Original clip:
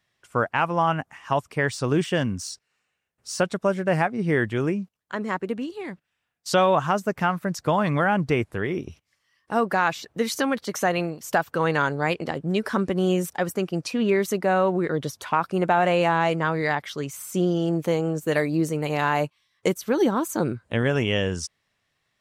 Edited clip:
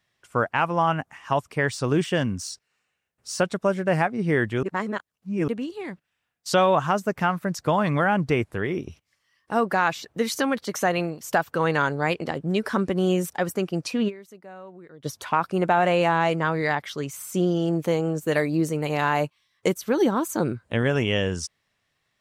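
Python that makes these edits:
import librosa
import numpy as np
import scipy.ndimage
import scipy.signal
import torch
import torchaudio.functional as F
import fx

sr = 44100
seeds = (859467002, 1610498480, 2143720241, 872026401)

y = fx.edit(x, sr, fx.reverse_span(start_s=4.63, length_s=0.85),
    fx.fade_down_up(start_s=14.08, length_s=0.98, db=-21.5, fade_s=0.13, curve='exp'), tone=tone)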